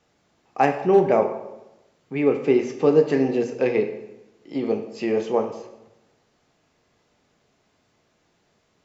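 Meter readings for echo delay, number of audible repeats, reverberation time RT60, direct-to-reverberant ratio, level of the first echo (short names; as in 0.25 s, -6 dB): none, none, 0.95 s, 4.5 dB, none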